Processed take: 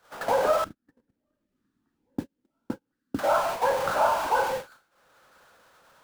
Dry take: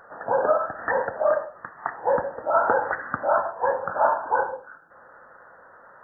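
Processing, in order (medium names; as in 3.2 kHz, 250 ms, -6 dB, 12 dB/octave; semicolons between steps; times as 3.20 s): jump at every zero crossing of -24.5 dBFS; 0.64–3.19 s: FFT filter 140 Hz 0 dB, 270 Hz +10 dB, 630 Hz -26 dB, 2 kHz -18 dB; gate -27 dBFS, range -46 dB; three bands compressed up and down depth 40%; trim -3 dB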